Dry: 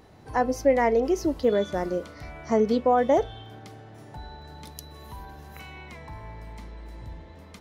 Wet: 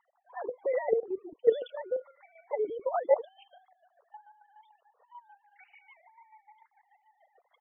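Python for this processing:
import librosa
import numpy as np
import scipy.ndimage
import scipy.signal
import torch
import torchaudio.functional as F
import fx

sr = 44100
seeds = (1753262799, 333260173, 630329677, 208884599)

y = fx.sine_speech(x, sr)
y = fx.low_shelf(y, sr, hz=390.0, db=4.5)
y = fx.level_steps(y, sr, step_db=9)
y = fx.chopper(y, sr, hz=6.8, depth_pct=65, duty_pct=35)
y = fx.spec_topn(y, sr, count=32)
y = fx.band_widen(y, sr, depth_pct=70, at=(1.0, 1.62))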